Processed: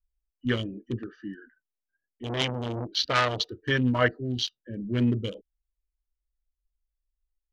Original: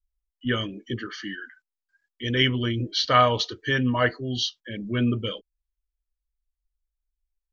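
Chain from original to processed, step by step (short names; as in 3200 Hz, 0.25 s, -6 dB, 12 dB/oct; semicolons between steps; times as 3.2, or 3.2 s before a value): Wiener smoothing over 41 samples; 2.23–3.38 core saturation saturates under 3000 Hz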